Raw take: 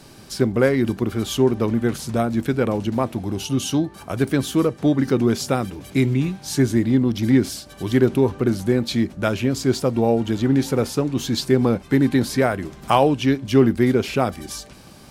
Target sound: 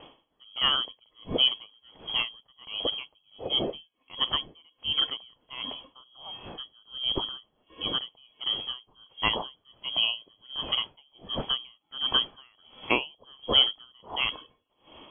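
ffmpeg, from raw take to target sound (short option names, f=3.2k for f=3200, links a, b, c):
-af "aexciter=amount=11.3:drive=8:freq=2.6k,lowpass=f=2.9k:t=q:w=0.5098,lowpass=f=2.9k:t=q:w=0.6013,lowpass=f=2.9k:t=q:w=0.9,lowpass=f=2.9k:t=q:w=2.563,afreqshift=-3400,aeval=exprs='val(0)*pow(10,-35*(0.5-0.5*cos(2*PI*1.4*n/s))/20)':c=same,volume=-6dB"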